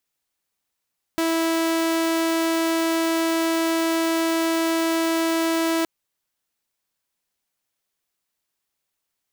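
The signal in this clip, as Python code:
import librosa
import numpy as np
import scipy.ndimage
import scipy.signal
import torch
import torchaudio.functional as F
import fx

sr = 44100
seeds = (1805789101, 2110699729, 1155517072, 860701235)

y = 10.0 ** (-17.0 / 20.0) * (2.0 * np.mod(328.0 * (np.arange(round(4.67 * sr)) / sr), 1.0) - 1.0)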